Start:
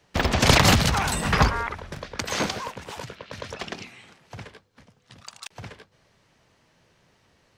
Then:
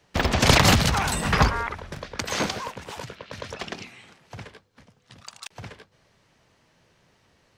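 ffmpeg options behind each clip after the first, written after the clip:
ffmpeg -i in.wav -af anull out.wav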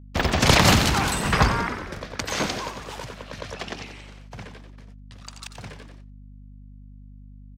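ffmpeg -i in.wav -filter_complex "[0:a]asplit=8[link_01][link_02][link_03][link_04][link_05][link_06][link_07][link_08];[link_02]adelay=90,afreqshift=61,volume=-9.5dB[link_09];[link_03]adelay=180,afreqshift=122,volume=-13.9dB[link_10];[link_04]adelay=270,afreqshift=183,volume=-18.4dB[link_11];[link_05]adelay=360,afreqshift=244,volume=-22.8dB[link_12];[link_06]adelay=450,afreqshift=305,volume=-27.2dB[link_13];[link_07]adelay=540,afreqshift=366,volume=-31.7dB[link_14];[link_08]adelay=630,afreqshift=427,volume=-36.1dB[link_15];[link_01][link_09][link_10][link_11][link_12][link_13][link_14][link_15]amix=inputs=8:normalize=0,agate=range=-33dB:threshold=-53dB:ratio=16:detection=peak,aeval=exprs='val(0)+0.00708*(sin(2*PI*50*n/s)+sin(2*PI*2*50*n/s)/2+sin(2*PI*3*50*n/s)/3+sin(2*PI*4*50*n/s)/4+sin(2*PI*5*50*n/s)/5)':channel_layout=same" out.wav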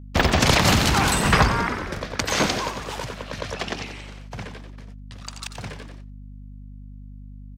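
ffmpeg -i in.wav -af "alimiter=limit=-10dB:level=0:latency=1:release=449,volume=4.5dB" out.wav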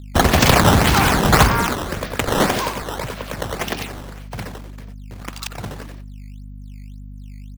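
ffmpeg -i in.wav -af "acrusher=samples=11:mix=1:aa=0.000001:lfo=1:lforange=17.6:lforate=1.8,volume=4.5dB" out.wav

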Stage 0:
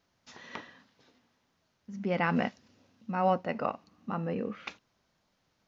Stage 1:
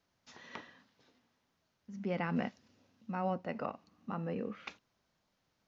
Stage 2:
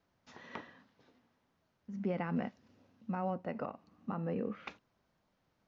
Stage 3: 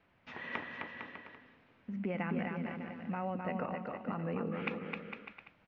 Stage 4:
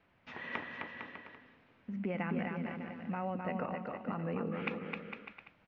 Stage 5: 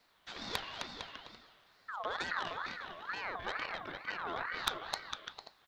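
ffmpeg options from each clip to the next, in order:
ffmpeg -i in.wav -filter_complex "[0:a]acrossover=split=400[link_01][link_02];[link_02]acompressor=threshold=-32dB:ratio=2.5[link_03];[link_01][link_03]amix=inputs=2:normalize=0,volume=-4.5dB" out.wav
ffmpeg -i in.wav -af "highshelf=frequency=2800:gain=-11,alimiter=level_in=5dB:limit=-24dB:level=0:latency=1:release=262,volume=-5dB,volume=3.5dB" out.wav
ffmpeg -i in.wav -af "acompressor=threshold=-46dB:ratio=2,lowpass=frequency=2500:width_type=q:width=2.4,aecho=1:1:260|455|601.2|710.9|793.2:0.631|0.398|0.251|0.158|0.1,volume=6dB" out.wav
ffmpeg -i in.wav -af anull out.wav
ffmpeg -i in.wav -af "aeval=exprs='0.106*(cos(1*acos(clip(val(0)/0.106,-1,1)))-cos(1*PI/2))+0.0106*(cos(6*acos(clip(val(0)/0.106,-1,1)))-cos(6*PI/2))':channel_layout=same,aexciter=amount=4.7:drive=3.3:freq=2400,aeval=exprs='val(0)*sin(2*PI*1300*n/s+1300*0.35/2.2*sin(2*PI*2.2*n/s))':channel_layout=same" out.wav

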